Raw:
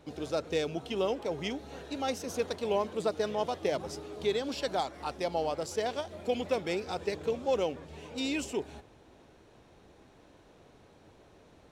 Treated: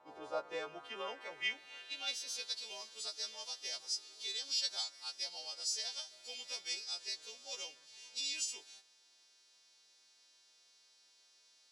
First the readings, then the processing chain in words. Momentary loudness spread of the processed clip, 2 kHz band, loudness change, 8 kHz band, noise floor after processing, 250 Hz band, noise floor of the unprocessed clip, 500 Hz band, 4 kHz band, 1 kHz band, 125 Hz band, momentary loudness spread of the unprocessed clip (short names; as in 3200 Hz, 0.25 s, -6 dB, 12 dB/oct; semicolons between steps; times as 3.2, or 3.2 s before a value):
9 LU, -3.5 dB, -6.5 dB, +3.5 dB, -68 dBFS, under -25 dB, -59 dBFS, -18.5 dB, +3.0 dB, -15.0 dB, under -30 dB, 6 LU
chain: frequency quantiser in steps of 2 st; band-pass sweep 920 Hz -> 5100 Hz, 0.33–2.66; gain +1.5 dB